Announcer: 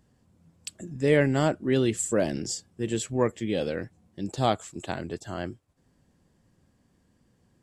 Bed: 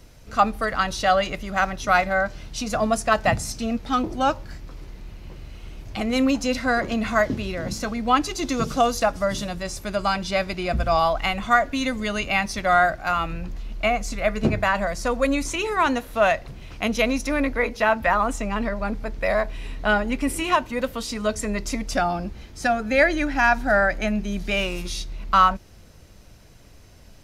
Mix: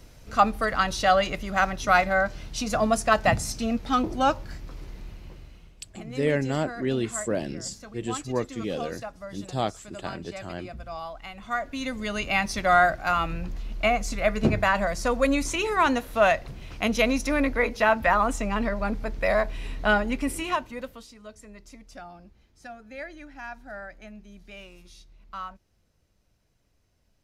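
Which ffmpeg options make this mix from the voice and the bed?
ffmpeg -i stem1.wav -i stem2.wav -filter_complex "[0:a]adelay=5150,volume=-3dB[link_01];[1:a]volume=14.5dB,afade=type=out:start_time=5.02:duration=0.72:silence=0.16788,afade=type=in:start_time=11.32:duration=1.22:silence=0.16788,afade=type=out:start_time=19.89:duration=1.24:silence=0.105925[link_02];[link_01][link_02]amix=inputs=2:normalize=0" out.wav

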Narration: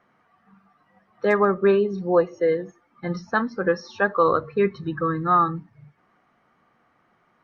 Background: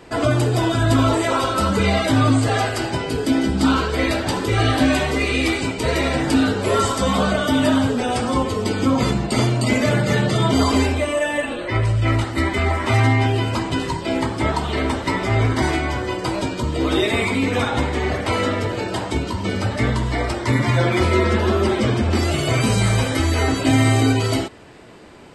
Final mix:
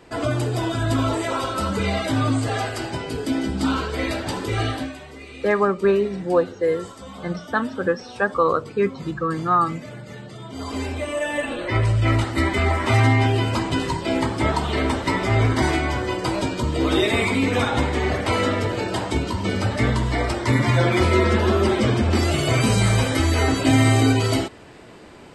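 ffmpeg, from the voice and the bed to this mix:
ffmpeg -i stem1.wav -i stem2.wav -filter_complex "[0:a]adelay=4200,volume=0dB[link_01];[1:a]volume=14dB,afade=type=out:start_time=4.61:duration=0.32:silence=0.188365,afade=type=in:start_time=10.51:duration=1.16:silence=0.112202[link_02];[link_01][link_02]amix=inputs=2:normalize=0" out.wav

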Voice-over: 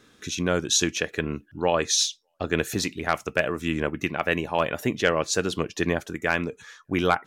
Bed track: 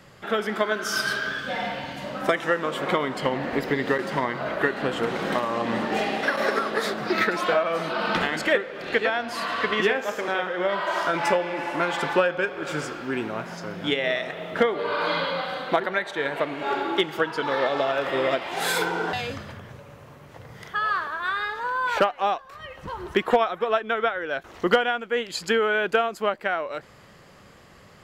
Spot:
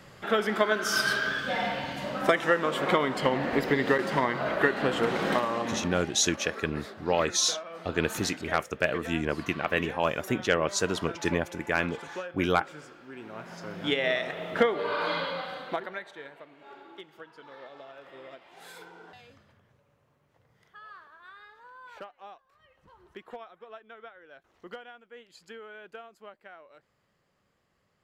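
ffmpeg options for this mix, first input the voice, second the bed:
ffmpeg -i stem1.wav -i stem2.wav -filter_complex "[0:a]adelay=5450,volume=-3dB[link_01];[1:a]volume=14dB,afade=type=out:start_time=5.31:duration=0.72:silence=0.158489,afade=type=in:start_time=13.16:duration=0.85:silence=0.188365,afade=type=out:start_time=14.61:duration=1.78:silence=0.0891251[link_02];[link_01][link_02]amix=inputs=2:normalize=0" out.wav

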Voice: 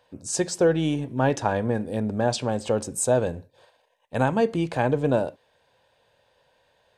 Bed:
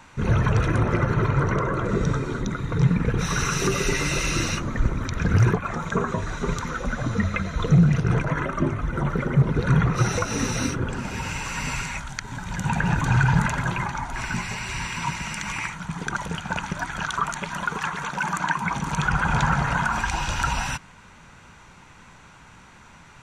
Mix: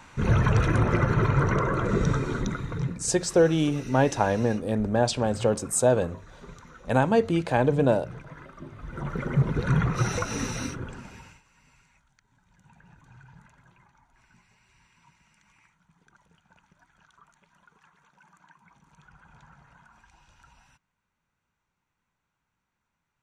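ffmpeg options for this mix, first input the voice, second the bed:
ffmpeg -i stem1.wav -i stem2.wav -filter_complex "[0:a]adelay=2750,volume=0.5dB[link_01];[1:a]volume=14.5dB,afade=type=out:start_time=2.42:duration=0.57:silence=0.11885,afade=type=in:start_time=8.71:duration=0.64:silence=0.16788,afade=type=out:start_time=10.27:duration=1.15:silence=0.0354813[link_02];[link_01][link_02]amix=inputs=2:normalize=0" out.wav

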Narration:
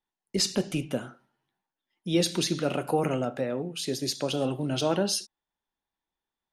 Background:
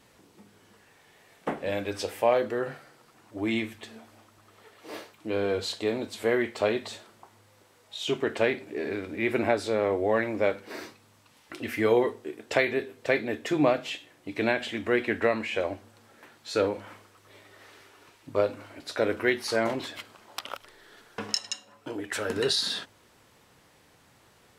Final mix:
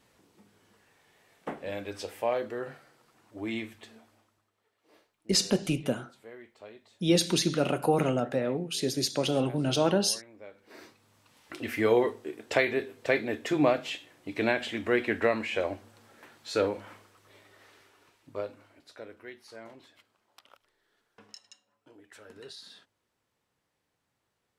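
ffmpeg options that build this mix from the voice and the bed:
ffmpeg -i stem1.wav -i stem2.wav -filter_complex "[0:a]adelay=4950,volume=1dB[link_01];[1:a]volume=15.5dB,afade=type=out:start_time=3.87:duration=0.64:silence=0.149624,afade=type=in:start_time=10.51:duration=1:silence=0.0841395,afade=type=out:start_time=16.45:duration=2.65:silence=0.105925[link_02];[link_01][link_02]amix=inputs=2:normalize=0" out.wav

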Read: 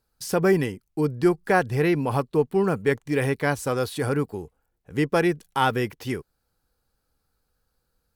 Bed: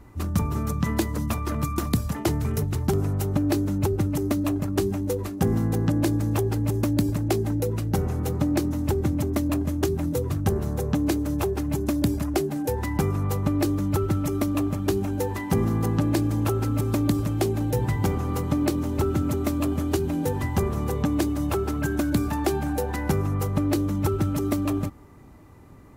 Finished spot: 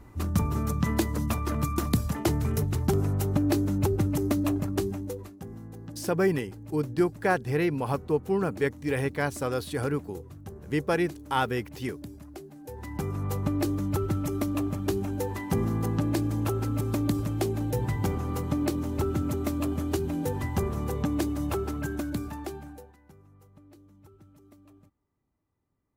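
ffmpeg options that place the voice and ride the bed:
ffmpeg -i stem1.wav -i stem2.wav -filter_complex "[0:a]adelay=5750,volume=-4.5dB[link_01];[1:a]volume=13.5dB,afade=type=out:start_time=4.51:duration=0.91:silence=0.133352,afade=type=in:start_time=12.61:duration=0.76:silence=0.177828,afade=type=out:start_time=21.53:duration=1.43:silence=0.0446684[link_02];[link_01][link_02]amix=inputs=2:normalize=0" out.wav

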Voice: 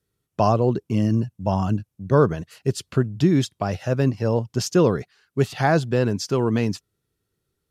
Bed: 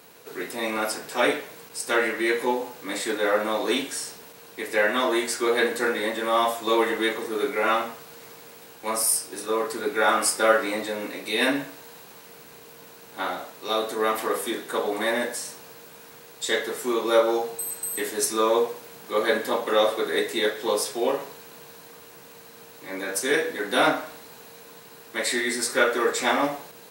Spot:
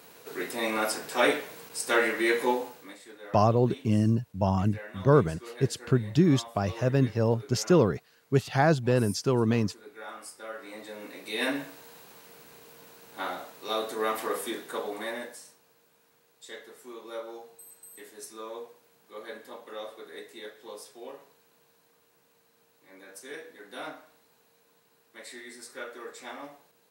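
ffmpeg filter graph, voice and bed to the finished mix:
ffmpeg -i stem1.wav -i stem2.wav -filter_complex "[0:a]adelay=2950,volume=-3.5dB[link_01];[1:a]volume=15dB,afade=type=out:start_time=2.51:duration=0.46:silence=0.1,afade=type=in:start_time=10.52:duration=1.16:silence=0.149624,afade=type=out:start_time=14.45:duration=1.13:silence=0.199526[link_02];[link_01][link_02]amix=inputs=2:normalize=0" out.wav

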